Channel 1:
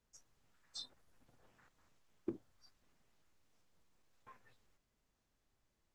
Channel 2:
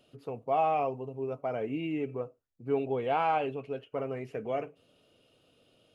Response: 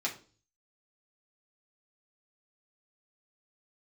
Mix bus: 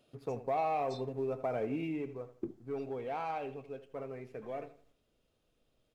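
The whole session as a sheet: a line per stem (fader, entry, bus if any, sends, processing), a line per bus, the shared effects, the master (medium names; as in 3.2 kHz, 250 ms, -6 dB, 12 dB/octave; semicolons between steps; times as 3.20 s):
-4.5 dB, 0.15 s, send -14 dB, no echo send, bass shelf 490 Hz +8.5 dB
1.67 s -2 dB -> 2.19 s -11.5 dB, 0.00 s, no send, echo send -14 dB, waveshaping leveller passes 1; band-stop 2.9 kHz, Q 10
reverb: on, RT60 0.40 s, pre-delay 3 ms
echo: feedback delay 80 ms, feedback 33%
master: compression 2.5:1, threshold -32 dBFS, peak gain reduction 6 dB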